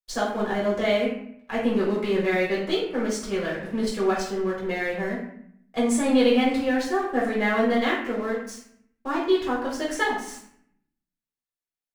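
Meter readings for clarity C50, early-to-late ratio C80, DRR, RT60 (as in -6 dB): 3.0 dB, 6.5 dB, -7.5 dB, 0.65 s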